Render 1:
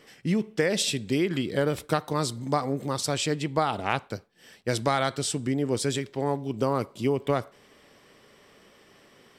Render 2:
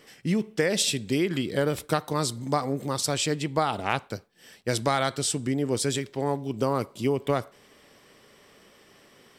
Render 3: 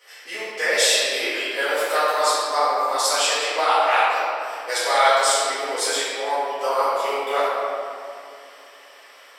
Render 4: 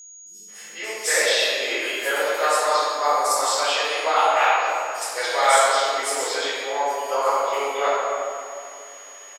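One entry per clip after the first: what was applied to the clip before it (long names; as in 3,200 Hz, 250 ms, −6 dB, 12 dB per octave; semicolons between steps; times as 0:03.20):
high-shelf EQ 6,200 Hz +5 dB
high-pass filter 620 Hz 24 dB per octave; convolution reverb RT60 2.6 s, pre-delay 4 ms, DRR −15 dB; level −3.5 dB
three-band delay without the direct sound lows, highs, mids 260/480 ms, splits 190/5,300 Hz; steady tone 6,700 Hz −41 dBFS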